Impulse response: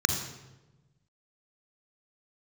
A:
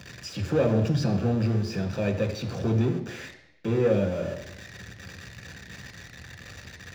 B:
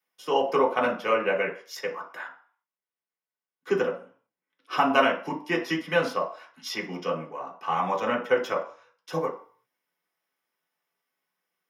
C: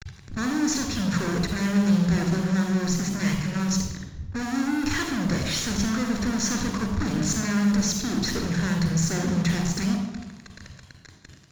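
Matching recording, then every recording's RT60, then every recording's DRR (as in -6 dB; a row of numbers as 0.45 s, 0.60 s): C; 0.85 s, 0.45 s, 1.1 s; 3.5 dB, -3.5 dB, 4.0 dB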